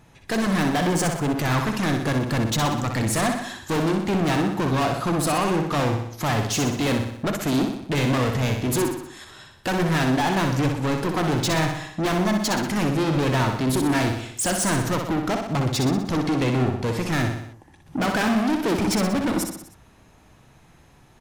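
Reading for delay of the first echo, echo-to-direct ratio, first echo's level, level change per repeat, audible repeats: 62 ms, -4.0 dB, -5.5 dB, -5.0 dB, 5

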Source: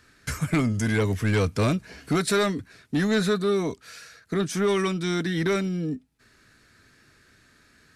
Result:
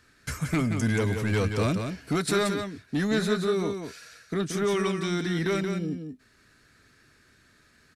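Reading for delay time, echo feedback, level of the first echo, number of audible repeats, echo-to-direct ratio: 0.178 s, no steady repeat, -6.5 dB, 1, -6.5 dB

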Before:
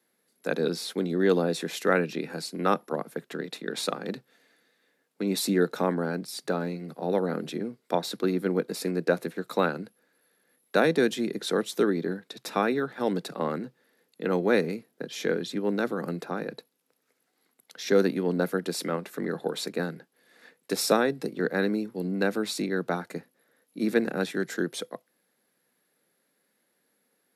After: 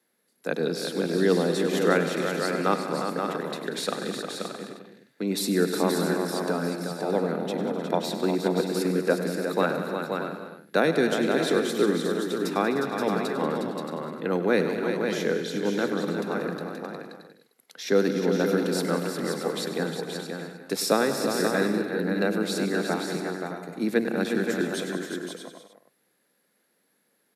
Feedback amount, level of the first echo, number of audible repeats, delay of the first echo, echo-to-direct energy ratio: no steady repeat, -12.5 dB, 15, 0.1 s, -1.0 dB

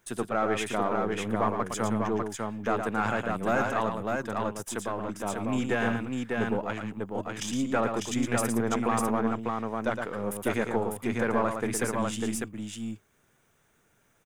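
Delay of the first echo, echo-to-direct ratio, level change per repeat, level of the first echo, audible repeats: 0.113 s, -1.5 dB, no steady repeat, -6.5 dB, 2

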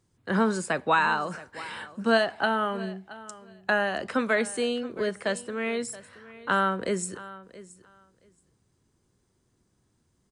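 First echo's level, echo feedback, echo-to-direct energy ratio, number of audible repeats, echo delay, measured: -18.0 dB, 16%, -18.0 dB, 2, 0.675 s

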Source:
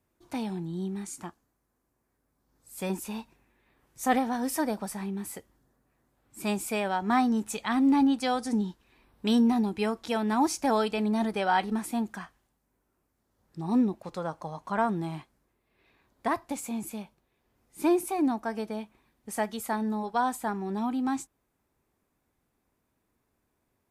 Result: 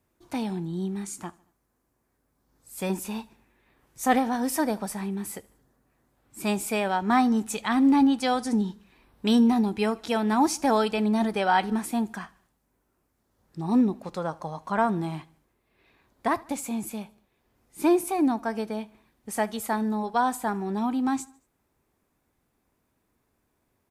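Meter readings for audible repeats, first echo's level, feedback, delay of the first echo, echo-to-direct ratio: 2, -24.0 dB, 52%, 75 ms, -22.5 dB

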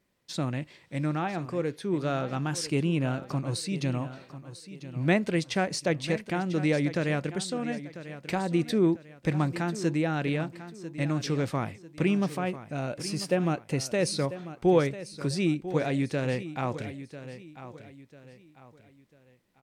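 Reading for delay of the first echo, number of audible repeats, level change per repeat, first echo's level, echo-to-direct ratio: 0.995 s, 3, -9.0 dB, -13.5 dB, -13.0 dB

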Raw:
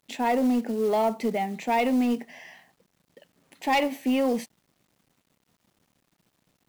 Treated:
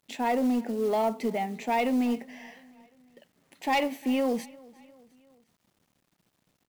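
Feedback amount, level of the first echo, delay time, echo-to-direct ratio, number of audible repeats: 52%, -23.5 dB, 0.352 s, -22.0 dB, 3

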